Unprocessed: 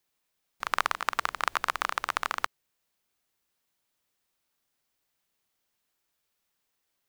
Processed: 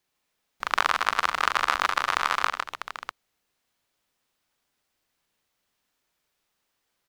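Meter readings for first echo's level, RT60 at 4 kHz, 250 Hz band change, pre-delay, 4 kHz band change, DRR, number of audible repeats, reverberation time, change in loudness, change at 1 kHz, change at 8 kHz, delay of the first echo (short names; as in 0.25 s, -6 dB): -7.5 dB, none, +5.0 dB, none, +6.5 dB, none, 4, none, +5.5 dB, +5.5 dB, +3.0 dB, 41 ms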